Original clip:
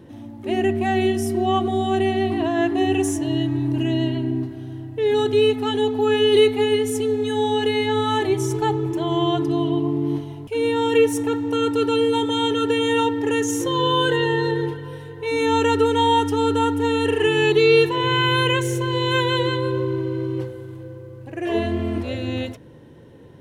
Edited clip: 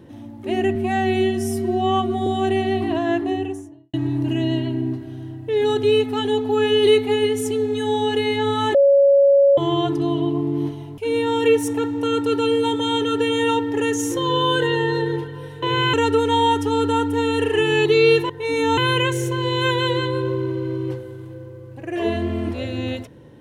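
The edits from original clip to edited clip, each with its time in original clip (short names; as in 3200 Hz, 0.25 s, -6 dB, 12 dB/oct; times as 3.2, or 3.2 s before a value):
0.75–1.76 stretch 1.5×
2.48–3.43 studio fade out
8.24–9.07 bleep 558 Hz -10 dBFS
15.12–15.6 swap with 17.96–18.27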